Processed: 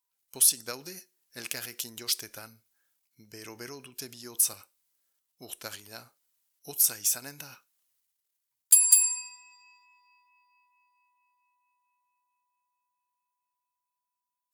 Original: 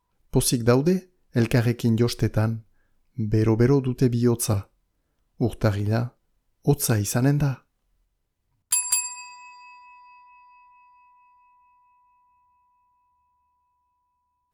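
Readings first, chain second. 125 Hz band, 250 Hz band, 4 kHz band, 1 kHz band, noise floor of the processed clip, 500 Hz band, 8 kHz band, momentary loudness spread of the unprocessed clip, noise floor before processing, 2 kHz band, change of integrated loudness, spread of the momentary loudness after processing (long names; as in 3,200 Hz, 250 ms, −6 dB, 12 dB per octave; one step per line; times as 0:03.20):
−33.0 dB, −27.0 dB, −0.5 dB, −15.0 dB, below −85 dBFS, −22.5 dB, +4.0 dB, 11 LU, −74 dBFS, −9.0 dB, −0.5 dB, 23 LU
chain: transient designer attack +3 dB, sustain +7 dB
first difference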